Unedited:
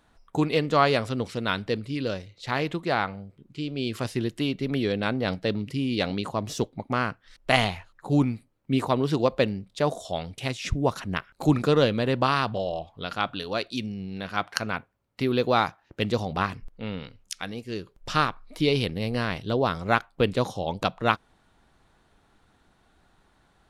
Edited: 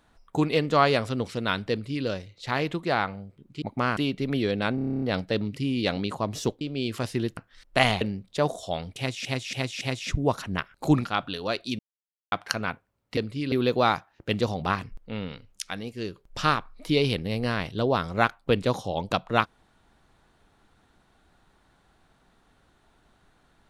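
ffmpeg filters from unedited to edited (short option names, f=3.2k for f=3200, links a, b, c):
-filter_complex "[0:a]asplit=23[a][b][c][d][e][f][g][h][i][j][k][l][m][n][o][p][q][r][s][t][u][v][w];[a]atrim=end=3.622[x];[b]atrim=start=6.748:end=7.102[y];[c]atrim=start=4.378:end=5.192[z];[d]atrim=start=5.158:end=5.192[aa];[e]atrim=start=5.158:end=5.192[ab];[f]atrim=start=5.158:end=5.192[ac];[g]atrim=start=5.158:end=5.192[ad];[h]atrim=start=5.158:end=5.192[ae];[i]atrim=start=5.158:end=5.192[af];[j]atrim=start=5.158:end=5.192[ag];[k]atrim=start=5.158:end=5.192[ah];[l]atrim=start=5.158:end=6.752[ai];[m]atrim=start=3.618:end=4.382[aj];[n]atrim=start=7.098:end=7.742[ak];[o]atrim=start=9.428:end=10.672[al];[p]atrim=start=10.388:end=10.672[am];[q]atrim=start=10.388:end=10.672[an];[r]atrim=start=10.388:end=11.632[ao];[s]atrim=start=13.108:end=13.85,asetpts=PTS-STARTPTS,afade=t=out:st=0.738:d=0.004:c=hsin[ap];[t]atrim=start=13.85:end=14.38,asetpts=PTS-STARTPTS,volume=0[aq];[u]atrim=start=14.38:end=15.232,asetpts=PTS-STARTPTS,afade=t=in:d=0.004:c=hsin[ar];[v]atrim=start=1.708:end=2.062[as];[w]atrim=start=15.228[at];[x][y]acrossfade=d=0.004:c1=hsin:c2=hsin[au];[au][z]acrossfade=d=0.004:c1=hsin:c2=hsin[av];[av][aa]acrossfade=d=0.004:c1=hsin:c2=hsin[aw];[aw][ab]acrossfade=d=0.004:c1=hsin:c2=hsin[ax];[ax][ac]acrossfade=d=0.004:c1=hsin:c2=hsin[ay];[ay][ad]acrossfade=d=0.004:c1=hsin:c2=hsin[az];[az][ae]acrossfade=d=0.004:c1=hsin:c2=hsin[ba];[ba][af]acrossfade=d=0.004:c1=hsin:c2=hsin[bb];[bb][ag]acrossfade=d=0.004:c1=hsin:c2=hsin[bc];[bc][ah]acrossfade=d=0.004:c1=hsin:c2=hsin[bd];[bd][ai]acrossfade=d=0.004:c1=hsin:c2=hsin[be];[be][aj]acrossfade=d=0.004:c1=hsin:c2=hsin[bf];[bf][ak]acrossfade=d=0.004:c1=hsin:c2=hsin[bg];[bg][al]acrossfade=d=0.004:c1=hsin:c2=hsin[bh];[bh][am]acrossfade=d=0.004:c1=hsin:c2=hsin[bi];[bi][an]acrossfade=d=0.004:c1=hsin:c2=hsin[bj];[bj][ao]acrossfade=d=0.004:c1=hsin:c2=hsin[bk];[ap][aq][ar]concat=n=3:v=0:a=1[bl];[bk][bl]acrossfade=d=0.004:c1=hsin:c2=hsin[bm];[bm][as]acrossfade=d=0.004:c1=hsin:c2=hsin[bn];[bn][at]acrossfade=d=0.004:c1=hsin:c2=hsin"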